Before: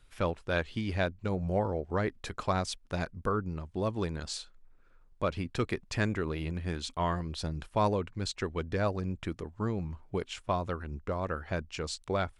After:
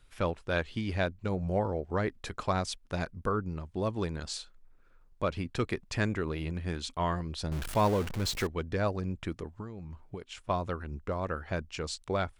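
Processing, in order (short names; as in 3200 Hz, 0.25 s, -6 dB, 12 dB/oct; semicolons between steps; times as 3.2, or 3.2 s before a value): 7.51–8.47 zero-crossing step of -33 dBFS; 9.56–10.5 compressor 8:1, threshold -38 dBFS, peak gain reduction 12 dB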